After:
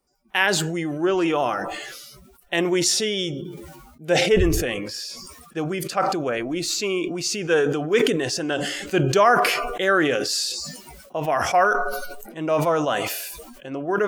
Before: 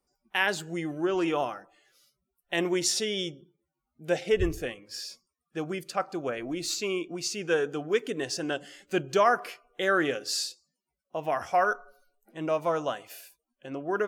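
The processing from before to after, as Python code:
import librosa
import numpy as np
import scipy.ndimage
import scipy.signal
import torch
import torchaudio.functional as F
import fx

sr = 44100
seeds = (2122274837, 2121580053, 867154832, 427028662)

y = fx.sustainer(x, sr, db_per_s=35.0)
y = F.gain(torch.from_numpy(y), 5.5).numpy()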